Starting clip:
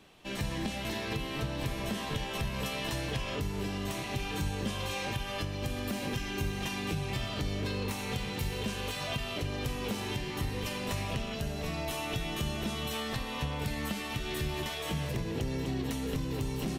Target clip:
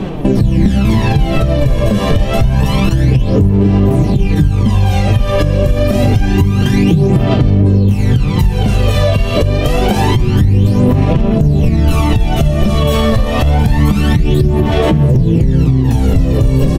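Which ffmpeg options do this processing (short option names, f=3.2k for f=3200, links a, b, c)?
-filter_complex "[0:a]asettb=1/sr,asplit=3[a][b][c];[a]atrim=end=6.434[d];[b]atrim=start=6.43:end=7.35,asetpts=PTS-STARTPTS,afade=t=in:d=0.004:c=qsin,afade=t=out:st=0.916:d=0.004:c=qsin,lowshelf=f=98:g=-11[e];[c]atrim=start=7.346[f];[d][e]acrossfade=d=0.004:c1=hsin:c2=qsin[g];[g][f]acrossfade=d=0.004:c1=qsin:c2=hsin,asettb=1/sr,asplit=3[h][i][j];[h]atrim=end=13.114[k];[i]atrim=start=13.11:end=13.81,asetpts=PTS-STARTPTS,afade=t=in:d=0.004:c=qsin,afade=t=out:st=0.696:d=0.004:c=qsin,volume=31dB,asoftclip=hard,volume=-31dB[l];[j]atrim=start=13.806[m];[k][l]acrossfade=d=0.004:c1=hsin:c2=qsin[n];[n][m]acrossfade=d=0.004:c1=qsin:c2=hsin,aecho=1:1:535:0.224,flanger=delay=5.1:depth=5.8:regen=49:speed=0.71:shape=triangular,asettb=1/sr,asplit=3[o][p][q];[o]atrim=end=9.594[r];[p]atrim=start=9.59:end=10.15,asetpts=PTS-STARTPTS,afade=t=in:d=0.004:c=qsin,afade=t=out:st=0.556:d=0.004:c=qsin,acrossover=split=260[s][t];[s]acompressor=threshold=-49dB:ratio=6[u];[u][t]amix=inputs=2:normalize=0[v];[q]atrim=start=10.146[w];[r][v]acrossfade=d=0.004:c1=hsin:c2=qsin[x];[x][w]acrossfade=d=0.004:c1=qsin:c2=hsin,tiltshelf=f=690:g=9,aphaser=in_gain=1:out_gain=1:delay=1.8:decay=0.64:speed=0.27:type=sinusoidal,acompressor=threshold=-37dB:ratio=6,alimiter=level_in=31.5dB:limit=-1dB:release=50:level=0:latency=1,volume=-1dB"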